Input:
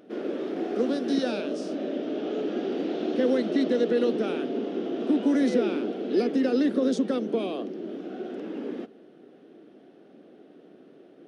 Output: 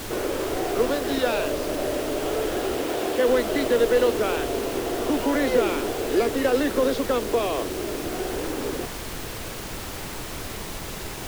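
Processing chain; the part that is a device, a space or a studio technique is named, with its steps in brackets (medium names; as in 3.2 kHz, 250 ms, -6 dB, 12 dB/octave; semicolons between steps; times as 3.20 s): high-pass 260 Hz; horn gramophone (band-pass 290–3300 Hz; peaking EQ 1 kHz +8 dB 0.28 oct; wow and flutter; pink noise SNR 12 dB); 2.75–3.27 s: high-pass 93 Hz -> 220 Hz 6 dB/octave; dynamic bell 300 Hz, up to -6 dB, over -37 dBFS, Q 0.95; trim +9 dB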